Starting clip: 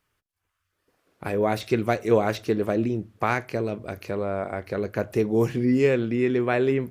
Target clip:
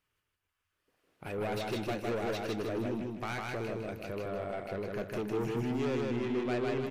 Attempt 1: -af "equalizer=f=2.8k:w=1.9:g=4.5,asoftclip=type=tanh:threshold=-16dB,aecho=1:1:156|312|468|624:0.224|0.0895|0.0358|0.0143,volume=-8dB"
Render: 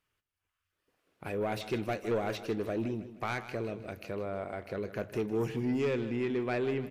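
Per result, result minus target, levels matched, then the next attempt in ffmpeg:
echo-to-direct -11 dB; soft clip: distortion -6 dB
-af "equalizer=f=2.8k:w=1.9:g=4.5,asoftclip=type=tanh:threshold=-16dB,aecho=1:1:156|312|468|624|780:0.794|0.318|0.127|0.0508|0.0203,volume=-8dB"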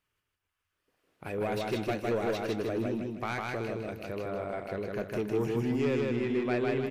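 soft clip: distortion -6 dB
-af "equalizer=f=2.8k:w=1.9:g=4.5,asoftclip=type=tanh:threshold=-23dB,aecho=1:1:156|312|468|624|780:0.794|0.318|0.127|0.0508|0.0203,volume=-8dB"

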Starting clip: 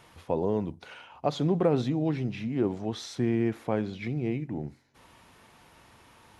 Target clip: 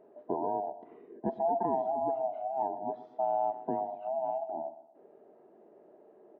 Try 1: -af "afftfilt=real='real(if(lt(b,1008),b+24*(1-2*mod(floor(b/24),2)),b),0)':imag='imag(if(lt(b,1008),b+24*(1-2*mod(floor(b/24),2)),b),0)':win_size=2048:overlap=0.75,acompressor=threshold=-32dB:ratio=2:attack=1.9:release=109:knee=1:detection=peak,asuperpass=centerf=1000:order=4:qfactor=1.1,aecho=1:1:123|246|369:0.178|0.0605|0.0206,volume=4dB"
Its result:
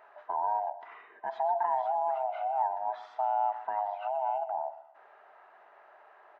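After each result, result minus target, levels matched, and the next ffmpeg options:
compressor: peak gain reduction +8.5 dB; 500 Hz band -4.5 dB
-af "afftfilt=real='real(if(lt(b,1008),b+24*(1-2*mod(floor(b/24),2)),b),0)':imag='imag(if(lt(b,1008),b+24*(1-2*mod(floor(b/24),2)),b),0)':win_size=2048:overlap=0.75,asuperpass=centerf=1000:order=4:qfactor=1.1,aecho=1:1:123|246|369:0.178|0.0605|0.0206,volume=4dB"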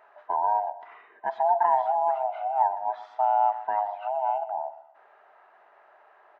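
500 Hz band -5.0 dB
-af "afftfilt=real='real(if(lt(b,1008),b+24*(1-2*mod(floor(b/24),2)),b),0)':imag='imag(if(lt(b,1008),b+24*(1-2*mod(floor(b/24),2)),b),0)':win_size=2048:overlap=0.75,asuperpass=centerf=390:order=4:qfactor=1.1,aecho=1:1:123|246|369:0.178|0.0605|0.0206,volume=4dB"

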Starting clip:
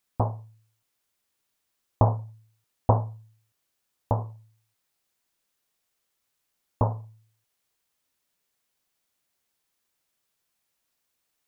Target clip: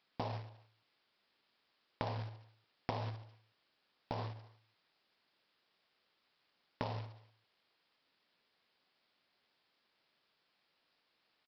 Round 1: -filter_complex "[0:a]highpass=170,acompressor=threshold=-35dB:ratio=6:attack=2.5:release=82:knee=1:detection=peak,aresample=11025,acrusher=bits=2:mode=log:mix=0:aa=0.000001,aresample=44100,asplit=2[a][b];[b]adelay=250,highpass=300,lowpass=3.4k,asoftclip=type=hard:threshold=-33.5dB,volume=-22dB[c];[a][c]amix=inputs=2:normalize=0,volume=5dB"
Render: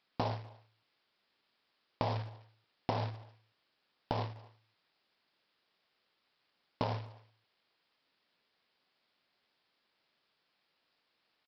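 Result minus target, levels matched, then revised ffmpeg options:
compressor: peak gain reduction -5.5 dB
-filter_complex "[0:a]highpass=170,acompressor=threshold=-41.5dB:ratio=6:attack=2.5:release=82:knee=1:detection=peak,aresample=11025,acrusher=bits=2:mode=log:mix=0:aa=0.000001,aresample=44100,asplit=2[a][b];[b]adelay=250,highpass=300,lowpass=3.4k,asoftclip=type=hard:threshold=-33.5dB,volume=-22dB[c];[a][c]amix=inputs=2:normalize=0,volume=5dB"

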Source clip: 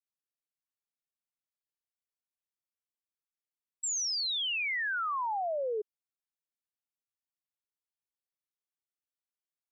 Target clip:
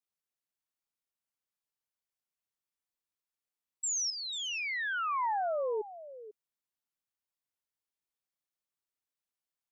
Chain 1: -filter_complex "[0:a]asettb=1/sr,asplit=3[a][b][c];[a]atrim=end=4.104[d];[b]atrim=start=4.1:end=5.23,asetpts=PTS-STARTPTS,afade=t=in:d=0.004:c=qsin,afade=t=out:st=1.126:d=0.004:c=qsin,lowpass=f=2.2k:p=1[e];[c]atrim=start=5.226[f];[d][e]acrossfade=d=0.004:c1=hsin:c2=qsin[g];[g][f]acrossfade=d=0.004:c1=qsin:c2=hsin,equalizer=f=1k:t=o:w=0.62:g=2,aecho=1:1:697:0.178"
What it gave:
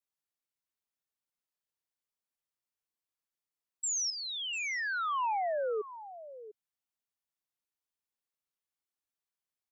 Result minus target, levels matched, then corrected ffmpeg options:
echo 0.203 s late
-filter_complex "[0:a]asettb=1/sr,asplit=3[a][b][c];[a]atrim=end=4.104[d];[b]atrim=start=4.1:end=5.23,asetpts=PTS-STARTPTS,afade=t=in:d=0.004:c=qsin,afade=t=out:st=1.126:d=0.004:c=qsin,lowpass=f=2.2k:p=1[e];[c]atrim=start=5.226[f];[d][e]acrossfade=d=0.004:c1=hsin:c2=qsin[g];[g][f]acrossfade=d=0.004:c1=qsin:c2=hsin,equalizer=f=1k:t=o:w=0.62:g=2,aecho=1:1:494:0.178"

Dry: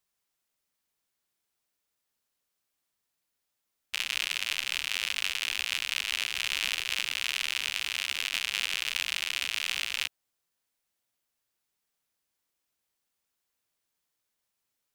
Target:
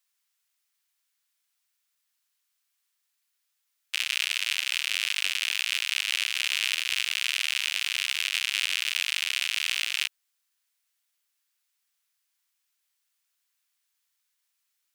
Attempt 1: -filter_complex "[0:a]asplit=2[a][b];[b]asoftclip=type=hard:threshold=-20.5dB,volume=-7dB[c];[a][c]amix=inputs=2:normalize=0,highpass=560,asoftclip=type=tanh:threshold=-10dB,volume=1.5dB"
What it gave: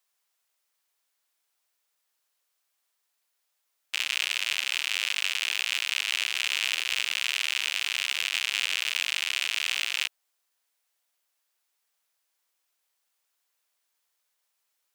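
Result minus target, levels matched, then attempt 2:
hard clip: distortion +37 dB; 500 Hz band +12.5 dB
-filter_complex "[0:a]asplit=2[a][b];[b]asoftclip=type=hard:threshold=-9.5dB,volume=-7dB[c];[a][c]amix=inputs=2:normalize=0,highpass=1.4k,asoftclip=type=tanh:threshold=-10dB,volume=1.5dB"

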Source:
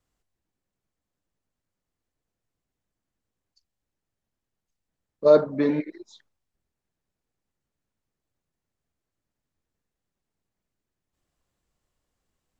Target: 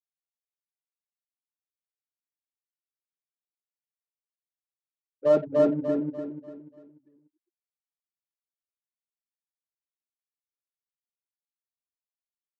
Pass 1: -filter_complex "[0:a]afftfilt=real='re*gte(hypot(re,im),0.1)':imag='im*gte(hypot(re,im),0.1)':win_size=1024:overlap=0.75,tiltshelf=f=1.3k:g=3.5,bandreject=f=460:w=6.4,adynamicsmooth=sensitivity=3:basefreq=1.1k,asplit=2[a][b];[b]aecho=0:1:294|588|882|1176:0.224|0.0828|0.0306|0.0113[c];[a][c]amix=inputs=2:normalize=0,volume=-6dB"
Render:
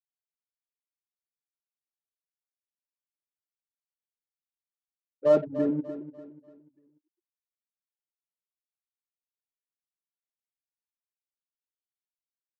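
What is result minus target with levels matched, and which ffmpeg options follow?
echo-to-direct -11.5 dB
-filter_complex "[0:a]afftfilt=real='re*gte(hypot(re,im),0.1)':imag='im*gte(hypot(re,im),0.1)':win_size=1024:overlap=0.75,tiltshelf=f=1.3k:g=3.5,bandreject=f=460:w=6.4,adynamicsmooth=sensitivity=3:basefreq=1.1k,asplit=2[a][b];[b]aecho=0:1:294|588|882|1176|1470:0.841|0.311|0.115|0.0426|0.0158[c];[a][c]amix=inputs=2:normalize=0,volume=-6dB"

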